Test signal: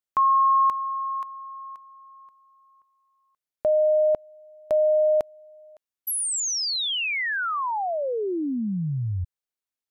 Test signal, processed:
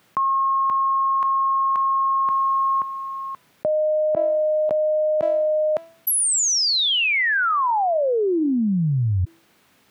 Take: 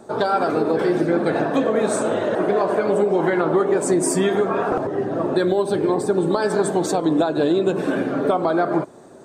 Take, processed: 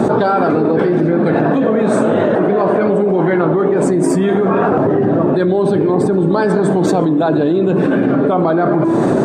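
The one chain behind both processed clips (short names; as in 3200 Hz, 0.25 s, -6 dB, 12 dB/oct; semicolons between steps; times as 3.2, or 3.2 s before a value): HPF 170 Hz 12 dB/oct; tone controls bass +13 dB, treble -12 dB; de-hum 330.5 Hz, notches 29; fast leveller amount 100%; gain -1.5 dB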